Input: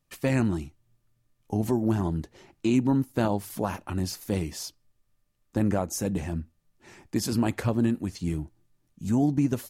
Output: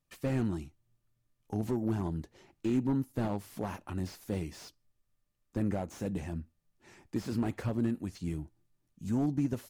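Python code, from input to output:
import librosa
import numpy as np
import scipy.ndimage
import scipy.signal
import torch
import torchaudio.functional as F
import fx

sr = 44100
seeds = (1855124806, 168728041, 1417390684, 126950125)

y = fx.slew_limit(x, sr, full_power_hz=43.0)
y = y * librosa.db_to_amplitude(-6.5)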